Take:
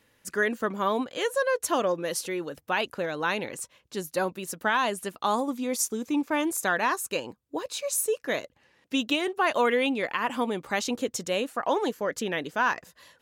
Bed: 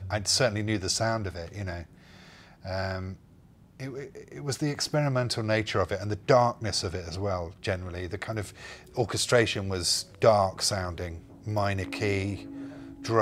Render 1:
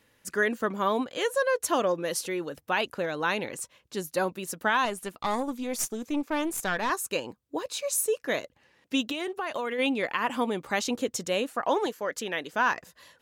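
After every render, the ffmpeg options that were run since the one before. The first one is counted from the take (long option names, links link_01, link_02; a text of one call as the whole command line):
ffmpeg -i in.wav -filter_complex "[0:a]asettb=1/sr,asplit=3[link_01][link_02][link_03];[link_01]atrim=end=4.854[link_04];[link_02]atrim=start=4.85:end=6.9,asetpts=PTS-STARTPTS,afade=type=in:duration=0.004:curve=qsin,afade=type=out:start_time=2.046:duration=0.004:curve=qsin,aeval=exprs='(tanh(8.91*val(0)+0.55)-tanh(0.55))/8.91':channel_layout=same[link_05];[link_03]atrim=start=6.896[link_06];[link_04][link_05]acrossfade=duration=0.004:curve1=hsin:curve2=qsin[link_07];[link_07][link_06]acrossfade=duration=0.004:curve1=qsin:curve2=hsin,asplit=3[link_08][link_09][link_10];[link_08]afade=type=out:start_time=9.01:duration=0.02[link_11];[link_09]acompressor=threshold=-27dB:ratio=12:attack=3.2:release=140:knee=1:detection=peak,afade=type=in:start_time=9.01:duration=0.02,afade=type=out:start_time=9.78:duration=0.02[link_12];[link_10]afade=type=in:start_time=9.78:duration=0.02[link_13];[link_11][link_12][link_13]amix=inputs=3:normalize=0,asettb=1/sr,asplit=3[link_14][link_15][link_16];[link_14]atrim=end=11.864[link_17];[link_15]atrim=start=11.86:end=12.53,asetpts=PTS-STARTPTS,afade=type=in:duration=0.004:curve=qsin,afade=type=out:start_time=0.666:duration=0.004:curve=qsin,lowshelf=frequency=320:gain=-10[link_18];[link_16]atrim=start=12.526[link_19];[link_17][link_18]acrossfade=duration=0.004:curve1=hsin:curve2=qsin[link_20];[link_20][link_19]acrossfade=duration=0.004:curve1=qsin:curve2=hsin" out.wav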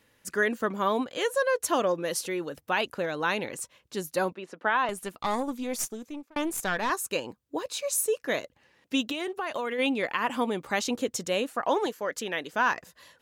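ffmpeg -i in.wav -filter_complex "[0:a]asettb=1/sr,asplit=3[link_01][link_02][link_03];[link_01]atrim=end=4.334[link_04];[link_02]atrim=start=4.33:end=4.89,asetpts=PTS-STARTPTS,afade=type=in:duration=0.004:curve=qsin,afade=type=out:start_time=0.556:duration=0.004:curve=qsin,highpass=290,lowpass=2500[link_05];[link_03]atrim=start=4.886[link_06];[link_04][link_05]acrossfade=duration=0.004:curve1=hsin:curve2=qsin[link_07];[link_07][link_06]acrossfade=duration=0.004:curve1=qsin:curve2=hsin,asplit=2[link_08][link_09];[link_08]atrim=end=6.36,asetpts=PTS-STARTPTS,afade=type=out:start_time=5.73:duration=0.63[link_10];[link_09]atrim=start=6.36,asetpts=PTS-STARTPTS,afade=type=in:duration=0.004:curve=hsin[link_11];[link_10][link_11]concat=n=2:v=0:a=1" out.wav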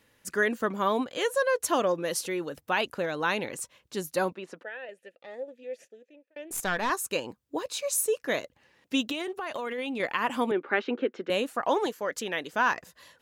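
ffmpeg -i in.wav -filter_complex "[0:a]asettb=1/sr,asplit=3[link_01][link_02][link_03];[link_01]atrim=end=4.634[link_04];[link_02]atrim=start=4.63:end=6.51,asetpts=PTS-STARTPTS,afade=type=in:duration=0.004:curve=qsin,afade=type=out:start_time=1.876:duration=0.004:curve=qsin,asplit=3[link_05][link_06][link_07];[link_05]bandpass=frequency=530:width_type=q:width=8,volume=0dB[link_08];[link_06]bandpass=frequency=1840:width_type=q:width=8,volume=-6dB[link_09];[link_07]bandpass=frequency=2480:width_type=q:width=8,volume=-9dB[link_10];[link_08][link_09][link_10]amix=inputs=3:normalize=0[link_11];[link_03]atrim=start=6.506[link_12];[link_04][link_11]acrossfade=duration=0.004:curve1=hsin:curve2=qsin[link_13];[link_13][link_12]acrossfade=duration=0.004:curve1=qsin:curve2=hsin,asettb=1/sr,asplit=3[link_14][link_15][link_16];[link_14]atrim=end=9.214[link_17];[link_15]atrim=start=9.21:end=10,asetpts=PTS-STARTPTS,afade=type=in:duration=0.004:curve=qsin,afade=type=out:start_time=0.786:duration=0.004:curve=qsin,acompressor=threshold=-29dB:ratio=6:attack=3.2:release=140:knee=1:detection=peak[link_18];[link_16]atrim=start=9.996[link_19];[link_17][link_18]acrossfade=duration=0.004:curve1=hsin:curve2=qsin[link_20];[link_20][link_19]acrossfade=duration=0.004:curve1=qsin:curve2=hsin,asettb=1/sr,asplit=3[link_21][link_22][link_23];[link_21]atrim=end=10.514[link_24];[link_22]atrim=start=10.51:end=11.3,asetpts=PTS-STARTPTS,afade=type=in:duration=0.004:curve=qsin,afade=type=out:start_time=0.786:duration=0.004:curve=qsin,highpass=frequency=230:width=0.5412,highpass=frequency=230:width=1.3066,equalizer=frequency=380:width_type=q:width=4:gain=8,equalizer=frequency=700:width_type=q:width=4:gain=-3,equalizer=frequency=1000:width_type=q:width=4:gain=-4,equalizer=frequency=1500:width_type=q:width=4:gain=8,lowpass=frequency=2800:width=0.5412,lowpass=frequency=2800:width=1.3066[link_25];[link_23]atrim=start=11.296[link_26];[link_24][link_25]acrossfade=duration=0.004:curve1=hsin:curve2=qsin[link_27];[link_27][link_26]acrossfade=duration=0.004:curve1=qsin:curve2=hsin" out.wav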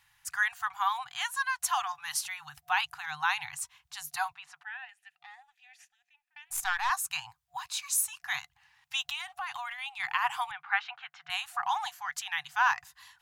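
ffmpeg -i in.wav -af "afftfilt=real='re*(1-between(b*sr/4096,160,720))':imag='im*(1-between(b*sr/4096,160,720))':win_size=4096:overlap=0.75,equalizer=frequency=120:width=0.87:gain=-7" out.wav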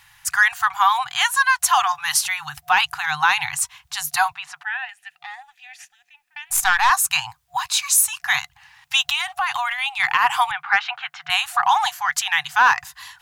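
ffmpeg -i in.wav -filter_complex "[0:a]asplit=2[link_01][link_02];[link_02]alimiter=limit=-21.5dB:level=0:latency=1:release=105,volume=2.5dB[link_03];[link_01][link_03]amix=inputs=2:normalize=0,acontrast=88" out.wav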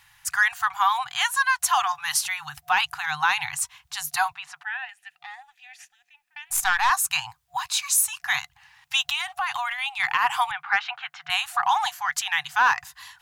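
ffmpeg -i in.wav -af "volume=-4.5dB" out.wav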